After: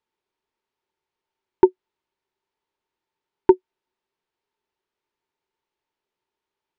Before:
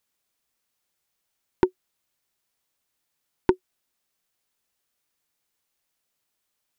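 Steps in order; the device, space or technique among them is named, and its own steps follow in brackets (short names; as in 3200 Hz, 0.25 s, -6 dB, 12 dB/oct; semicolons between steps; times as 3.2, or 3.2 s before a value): inside a cardboard box (LPF 3500 Hz 12 dB/oct; small resonant body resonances 390/900 Hz, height 14 dB, ringing for 45 ms); gain -3.5 dB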